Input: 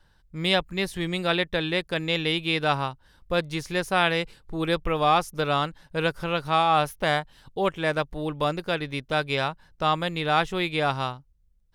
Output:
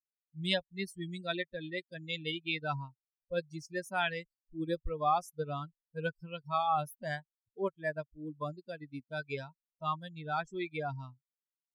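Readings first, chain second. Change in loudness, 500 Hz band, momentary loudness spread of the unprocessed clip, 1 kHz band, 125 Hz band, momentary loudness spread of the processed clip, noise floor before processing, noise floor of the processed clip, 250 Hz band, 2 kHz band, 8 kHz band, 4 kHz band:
−11.0 dB, −11.5 dB, 7 LU, −10.0 dB, −10.5 dB, 12 LU, −62 dBFS, below −85 dBFS, −11.5 dB, −11.5 dB, −11.5 dB, −12.5 dB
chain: spectral dynamics exaggerated over time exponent 3
level −4 dB

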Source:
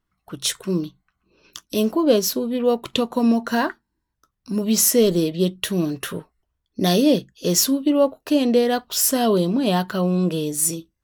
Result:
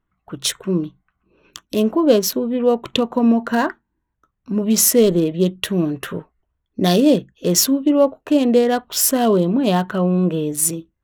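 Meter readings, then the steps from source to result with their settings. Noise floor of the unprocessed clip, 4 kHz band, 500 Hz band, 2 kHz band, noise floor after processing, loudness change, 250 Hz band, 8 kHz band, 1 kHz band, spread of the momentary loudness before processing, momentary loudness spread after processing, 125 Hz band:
−77 dBFS, +1.0 dB, +3.0 dB, +1.5 dB, −75 dBFS, +2.5 dB, +3.0 dB, +2.0 dB, +2.5 dB, 9 LU, 9 LU, +3.0 dB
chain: adaptive Wiener filter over 9 samples
level +3 dB

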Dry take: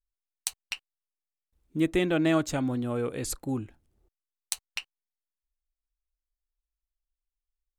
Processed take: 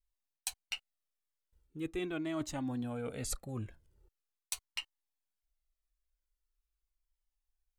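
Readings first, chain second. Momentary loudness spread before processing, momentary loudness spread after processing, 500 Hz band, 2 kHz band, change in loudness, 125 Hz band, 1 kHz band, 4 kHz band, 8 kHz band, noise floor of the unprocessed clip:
14 LU, 6 LU, −12.0 dB, −9.5 dB, −10.0 dB, −9.0 dB, −10.0 dB, −5.0 dB, −6.0 dB, below −85 dBFS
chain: reversed playback
downward compressor 6 to 1, threshold −34 dBFS, peak gain reduction 13.5 dB
reversed playback
flanger whose copies keep moving one way falling 0.42 Hz
level +3.5 dB

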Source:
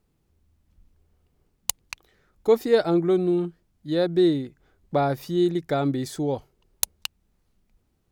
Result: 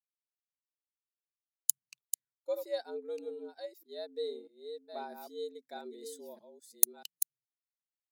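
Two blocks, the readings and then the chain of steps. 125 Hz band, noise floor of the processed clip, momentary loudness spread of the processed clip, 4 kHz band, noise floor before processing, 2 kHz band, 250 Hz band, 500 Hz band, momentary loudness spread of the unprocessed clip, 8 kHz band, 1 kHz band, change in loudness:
below −40 dB, below −85 dBFS, 18 LU, −13.0 dB, −70 dBFS, −17.5 dB, −28.0 dB, −16.0 dB, 16 LU, −2.0 dB, −17.0 dB, −12.5 dB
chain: delay that plays each chunk backwards 639 ms, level −5 dB
first-order pre-emphasis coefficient 0.9
downward expander −49 dBFS
frequency shifter +100 Hz
every bin expanded away from the loudest bin 1.5 to 1
level −2.5 dB

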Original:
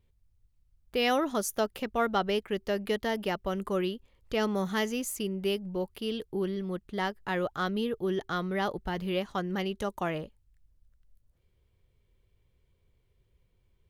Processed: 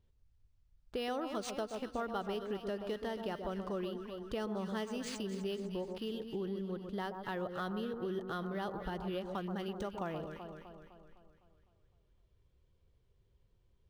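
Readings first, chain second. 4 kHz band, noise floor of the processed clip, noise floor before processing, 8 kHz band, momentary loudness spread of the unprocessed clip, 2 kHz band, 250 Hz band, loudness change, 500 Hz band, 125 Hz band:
−10.0 dB, −72 dBFS, −71 dBFS, −12.0 dB, 6 LU, −11.0 dB, −7.0 dB, −8.0 dB, −7.5 dB, −6.5 dB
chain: on a send: delay that swaps between a low-pass and a high-pass 127 ms, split 1,300 Hz, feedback 71%, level −8 dB
on the sum: downward compressor 2.5 to 1, threshold −35 dBFS, peak gain reduction 9.5 dB
parametric band 2,200 Hz −8.5 dB 0.4 octaves
linearly interpolated sample-rate reduction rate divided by 3×
level −2.5 dB

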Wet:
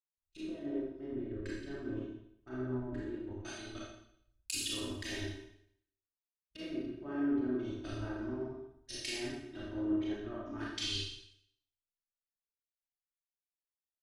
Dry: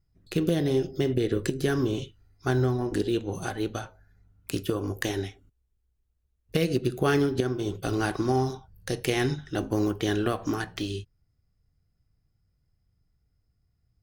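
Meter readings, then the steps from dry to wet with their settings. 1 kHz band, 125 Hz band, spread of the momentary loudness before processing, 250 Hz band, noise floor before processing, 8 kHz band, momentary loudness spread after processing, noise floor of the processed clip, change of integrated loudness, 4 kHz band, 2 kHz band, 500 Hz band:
−17.5 dB, −17.0 dB, 9 LU, −9.0 dB, −74 dBFS, −4.0 dB, 14 LU, below −85 dBFS, −11.0 dB, −4.0 dB, −11.5 dB, −14.5 dB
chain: treble cut that deepens with the level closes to 1,100 Hz, closed at −22.5 dBFS
first-order pre-emphasis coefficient 0.9
low-pass that shuts in the quiet parts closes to 550 Hz, open at −42.5 dBFS
low-shelf EQ 190 Hz +8.5 dB
comb filter 3.2 ms, depth 89%
output level in coarse steps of 23 dB
four-comb reverb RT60 1.2 s, combs from 28 ms, DRR −5.5 dB
multiband upward and downward expander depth 100%
level +1 dB

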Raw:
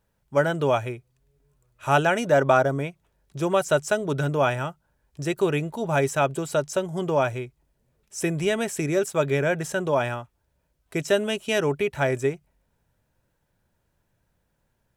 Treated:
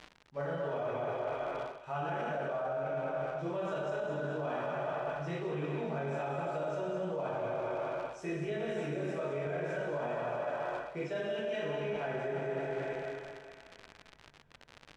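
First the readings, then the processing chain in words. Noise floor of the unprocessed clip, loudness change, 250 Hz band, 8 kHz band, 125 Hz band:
−73 dBFS, −12.0 dB, −12.0 dB, below −20 dB, −12.5 dB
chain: one scale factor per block 5 bits
feedback echo with a high-pass in the loop 203 ms, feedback 58%, high-pass 330 Hz, level −6 dB
chorus effect 0.93 Hz, delay 19 ms, depth 3 ms
dynamic equaliser 610 Hz, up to +4 dB, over −37 dBFS, Q 1.2
dense smooth reverb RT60 1.6 s, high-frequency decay 0.65×, DRR −8 dB
surface crackle 110 per second −29 dBFS
low-pass filter 3,600 Hz 12 dB per octave
brickwall limiter −9.5 dBFS, peak gain reduction 12 dB
reversed playback
downward compressor 8 to 1, threshold −31 dBFS, peak gain reduction 17 dB
reversed playback
level −2.5 dB

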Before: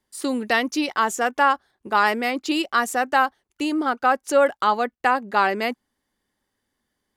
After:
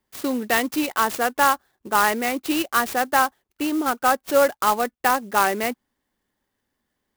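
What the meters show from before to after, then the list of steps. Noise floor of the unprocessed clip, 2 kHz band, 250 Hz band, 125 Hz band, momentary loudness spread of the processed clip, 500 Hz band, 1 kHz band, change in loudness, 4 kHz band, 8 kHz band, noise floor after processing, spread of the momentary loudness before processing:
−79 dBFS, −1.0 dB, 0.0 dB, can't be measured, 7 LU, 0.0 dB, −0.5 dB, 0.0 dB, 0.0 dB, +5.0 dB, −79 dBFS, 7 LU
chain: converter with an unsteady clock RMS 0.042 ms

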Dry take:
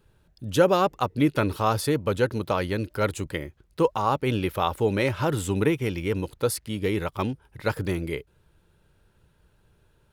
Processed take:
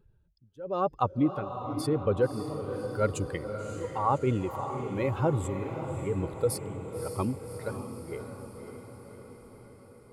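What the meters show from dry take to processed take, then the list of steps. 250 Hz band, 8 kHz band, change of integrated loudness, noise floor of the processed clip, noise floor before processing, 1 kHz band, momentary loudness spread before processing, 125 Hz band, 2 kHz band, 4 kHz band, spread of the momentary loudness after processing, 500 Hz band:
−5.5 dB, −6.0 dB, −5.5 dB, −59 dBFS, −64 dBFS, −5.0 dB, 8 LU, −4.0 dB, −11.5 dB, −12.5 dB, 17 LU, −5.5 dB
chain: expanding power law on the bin magnitudes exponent 1.6
amplitude tremolo 0.95 Hz, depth 99%
feedback delay with all-pass diffusion 578 ms, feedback 62%, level −8 dB
level −1 dB

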